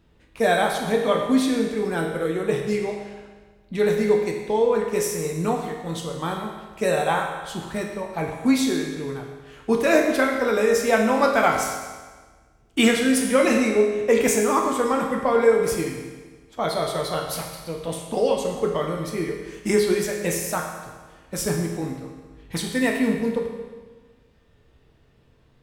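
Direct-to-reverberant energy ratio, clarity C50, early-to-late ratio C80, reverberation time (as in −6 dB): 0.0 dB, 3.5 dB, 5.5 dB, 1.4 s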